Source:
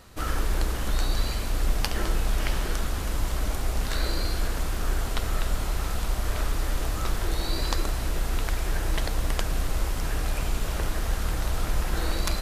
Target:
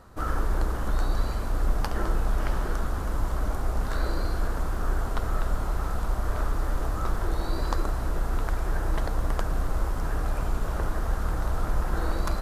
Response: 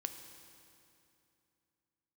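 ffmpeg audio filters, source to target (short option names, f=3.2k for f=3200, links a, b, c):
-af "highshelf=f=1.8k:t=q:w=1.5:g=-9"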